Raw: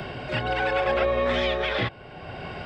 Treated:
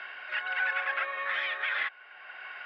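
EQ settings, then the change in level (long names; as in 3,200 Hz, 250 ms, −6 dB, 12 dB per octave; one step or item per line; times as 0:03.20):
high-pass with resonance 1,600 Hz, resonance Q 2.1
low-pass filter 2,400 Hz 12 dB per octave
−3.5 dB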